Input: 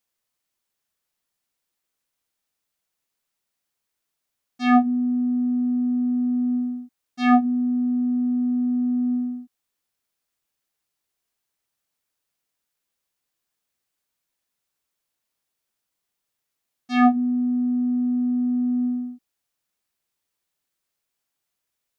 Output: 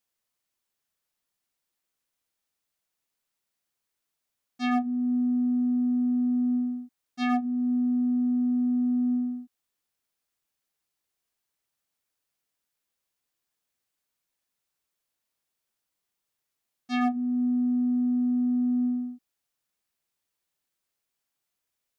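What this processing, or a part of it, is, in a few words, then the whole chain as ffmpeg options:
clipper into limiter: -af "asoftclip=type=hard:threshold=0.299,alimiter=limit=0.141:level=0:latency=1:release=355,volume=0.75"

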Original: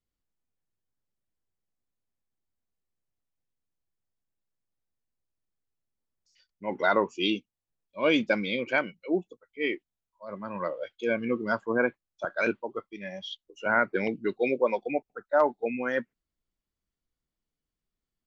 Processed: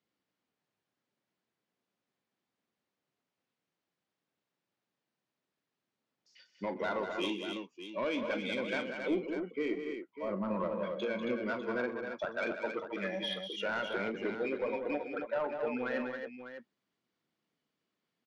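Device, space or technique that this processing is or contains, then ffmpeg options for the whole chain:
AM radio: -filter_complex "[0:a]highpass=120,highpass=160,lowpass=4000,acompressor=threshold=0.00891:ratio=4,asoftclip=type=tanh:threshold=0.0188,asettb=1/sr,asplit=3[s0][s1][s2];[s0]atrim=end=9.074[s3];[s1]atrim=start=9.07:end=10.78,asetpts=PTS-STARTPTS,afade=t=in:d=0.004:c=qsin,afade=t=out:st=1.706:d=0.004:c=qsin,tiltshelf=f=710:g=5.5[s4];[s2]atrim=start=10.776[s5];[s3][s4]acrossfade=d=0.004:c1=hsin:c2=qsin[s6];[s6][s5]acrossfade=d=0.004:c1=qsin:c2=hsin,aecho=1:1:41|126|193|273|599:0.266|0.141|0.398|0.473|0.282,volume=2.37"

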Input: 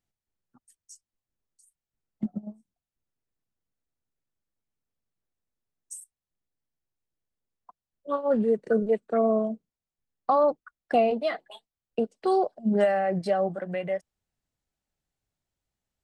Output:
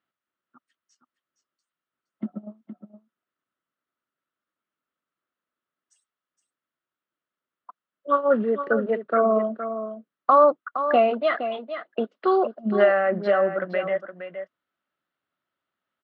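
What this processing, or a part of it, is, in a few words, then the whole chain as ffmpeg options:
phone earpiece: -af "highpass=340,equalizer=f=450:t=q:w=4:g=-7,equalizer=f=800:t=q:w=4:g=-9,equalizer=f=1300:t=q:w=4:g=9,equalizer=f=2400:t=q:w=4:g=-5,lowpass=f=3200:w=0.5412,lowpass=f=3200:w=1.3066,aecho=1:1:466:0.316,volume=2.51"

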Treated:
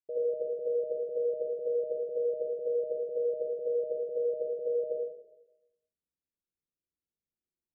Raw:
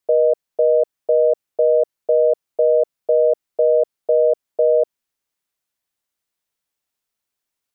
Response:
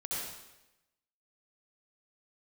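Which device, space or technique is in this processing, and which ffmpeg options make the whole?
next room: -filter_complex "[0:a]lowpass=f=410:w=0.5412,lowpass=f=410:w=1.3066[s0];[1:a]atrim=start_sample=2205[s1];[s0][s1]afir=irnorm=-1:irlink=0,volume=0.422"

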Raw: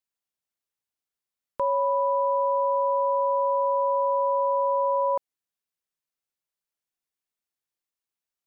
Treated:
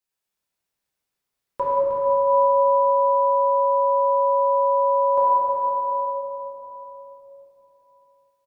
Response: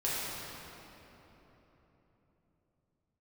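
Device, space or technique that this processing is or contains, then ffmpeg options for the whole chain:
cave: -filter_complex "[0:a]aecho=1:1:312:0.316[s0];[1:a]atrim=start_sample=2205[s1];[s0][s1]afir=irnorm=-1:irlink=0,volume=1.12"

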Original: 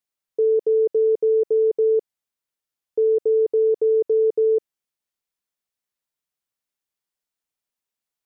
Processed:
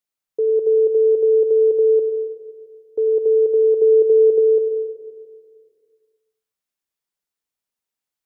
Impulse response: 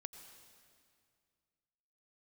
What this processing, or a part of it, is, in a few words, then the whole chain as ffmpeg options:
stairwell: -filter_complex "[0:a]asettb=1/sr,asplit=3[s0][s1][s2];[s0]atrim=end=3.794[s3];[s1]atrim=start=3.79:end=4.39,asetpts=PTS-STARTPTS,afade=t=in:d=0.004:c=qsin,afade=t=out:st=0.596:d=0.004:c=qsin,equalizer=f=320:t=o:w=0.77:g=5.5[s4];[s2]atrim=start=4.386[s5];[s3][s4]acrossfade=d=0.004:c1=hsin:c2=qsin[s6];[s6][s5]acrossfade=d=0.004:c1=qsin:c2=hsin[s7];[1:a]atrim=start_sample=2205[s8];[s7][s8]afir=irnorm=-1:irlink=0,volume=1.78"

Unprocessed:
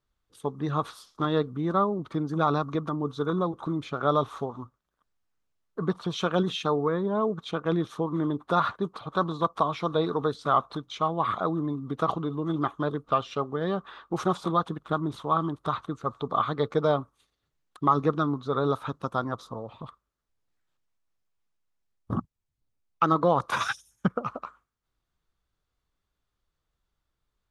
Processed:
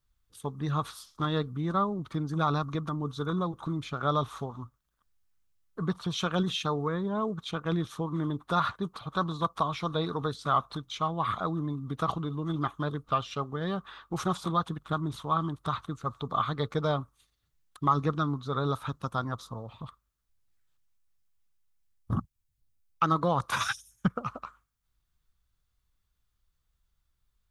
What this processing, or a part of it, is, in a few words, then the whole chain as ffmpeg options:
smiley-face EQ: -af "lowshelf=f=150:g=7,equalizer=f=420:t=o:w=2.4:g=-7.5,highshelf=f=8100:g=8"

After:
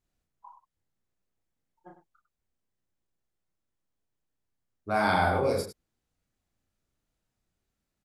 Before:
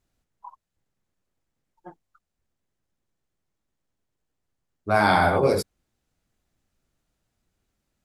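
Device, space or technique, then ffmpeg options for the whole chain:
slapback doubling: -filter_complex "[0:a]asplit=3[s0][s1][s2];[s1]adelay=33,volume=0.631[s3];[s2]adelay=101,volume=0.299[s4];[s0][s3][s4]amix=inputs=3:normalize=0,volume=0.422"

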